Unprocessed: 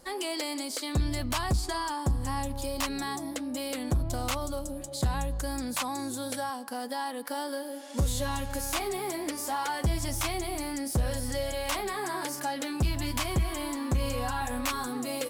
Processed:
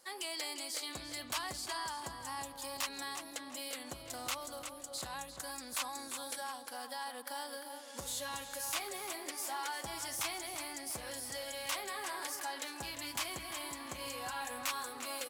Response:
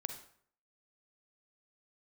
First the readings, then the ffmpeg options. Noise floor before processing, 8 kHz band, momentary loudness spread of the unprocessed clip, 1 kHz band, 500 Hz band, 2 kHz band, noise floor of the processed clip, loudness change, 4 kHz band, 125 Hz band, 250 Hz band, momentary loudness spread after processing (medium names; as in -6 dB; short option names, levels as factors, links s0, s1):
-39 dBFS, -4.0 dB, 5 LU, -8.0 dB, -11.5 dB, -5.0 dB, -50 dBFS, -8.0 dB, -4.0 dB, -25.5 dB, -17.0 dB, 5 LU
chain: -filter_complex "[0:a]highpass=f=1300:p=1,asplit=2[s0][s1];[s1]adelay=348,lowpass=f=4100:p=1,volume=0.398,asplit=2[s2][s3];[s3]adelay=348,lowpass=f=4100:p=1,volume=0.43,asplit=2[s4][s5];[s5]adelay=348,lowpass=f=4100:p=1,volume=0.43,asplit=2[s6][s7];[s7]adelay=348,lowpass=f=4100:p=1,volume=0.43,asplit=2[s8][s9];[s9]adelay=348,lowpass=f=4100:p=1,volume=0.43[s10];[s0][s2][s4][s6][s8][s10]amix=inputs=6:normalize=0,volume=0.631"